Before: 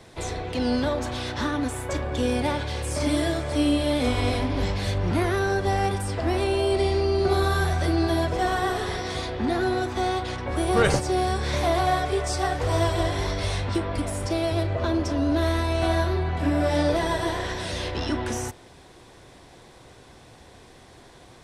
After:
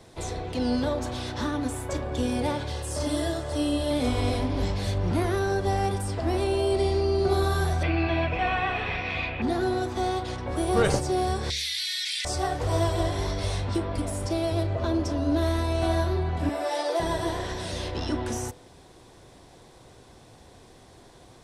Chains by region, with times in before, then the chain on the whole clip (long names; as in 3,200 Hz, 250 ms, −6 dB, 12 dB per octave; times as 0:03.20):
0:02.72–0:03.91: Butterworth band-reject 2,300 Hz, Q 7.8 + parametric band 200 Hz −6 dB 1.2 octaves
0:07.83–0:09.42: low-pass with resonance 2,500 Hz, resonance Q 14 + parametric band 380 Hz −12.5 dB 0.22 octaves
0:11.50–0:12.25: Butterworth high-pass 1,900 Hz 48 dB per octave + parametric band 4,300 Hz +9.5 dB 0.98 octaves + envelope flattener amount 100%
0:16.49–0:17.00: Butterworth high-pass 390 Hz + comb filter 5.8 ms, depth 56%
whole clip: parametric band 2,000 Hz −5 dB 1.7 octaves; hum removal 70.74 Hz, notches 8; level −1 dB